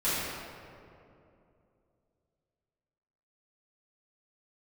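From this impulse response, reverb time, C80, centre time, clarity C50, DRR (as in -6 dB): 2.7 s, -1.5 dB, 0.151 s, -3.5 dB, -13.5 dB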